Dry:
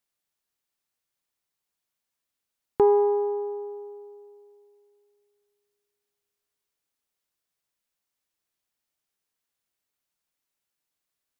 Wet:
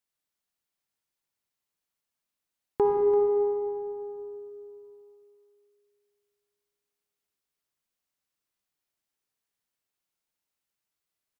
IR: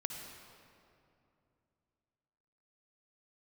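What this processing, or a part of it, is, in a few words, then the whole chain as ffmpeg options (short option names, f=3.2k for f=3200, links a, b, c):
cave: -filter_complex "[0:a]aecho=1:1:339:0.266[a];[1:a]atrim=start_sample=2205[b];[a][b]afir=irnorm=-1:irlink=0,volume=-2.5dB"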